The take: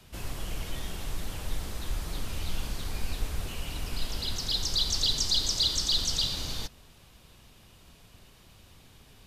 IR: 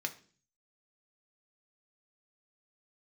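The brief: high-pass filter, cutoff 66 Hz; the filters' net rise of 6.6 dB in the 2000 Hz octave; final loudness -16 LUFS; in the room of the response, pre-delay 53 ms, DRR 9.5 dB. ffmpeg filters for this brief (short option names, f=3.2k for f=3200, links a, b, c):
-filter_complex "[0:a]highpass=66,equalizer=f=2k:t=o:g=8.5,asplit=2[a][b];[1:a]atrim=start_sample=2205,adelay=53[c];[b][c]afir=irnorm=-1:irlink=0,volume=-11.5dB[d];[a][d]amix=inputs=2:normalize=0,volume=12.5dB"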